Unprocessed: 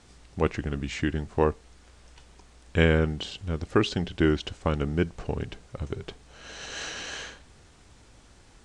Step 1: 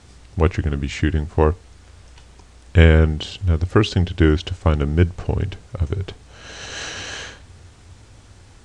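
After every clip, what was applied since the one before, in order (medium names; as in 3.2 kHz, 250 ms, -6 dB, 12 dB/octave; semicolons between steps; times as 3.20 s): peaking EQ 92 Hz +12 dB 0.57 oct; trim +5.5 dB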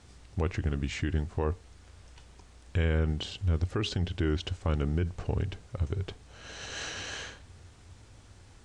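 peak limiter -12.5 dBFS, peak gain reduction 10.5 dB; trim -7.5 dB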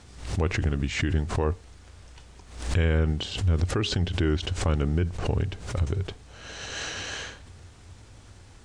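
swell ahead of each attack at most 95 dB/s; trim +4 dB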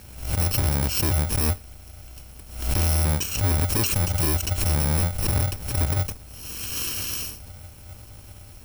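bit-reversed sample order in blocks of 64 samples; wavefolder -21.5 dBFS; attacks held to a fixed rise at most 200 dB/s; trim +5.5 dB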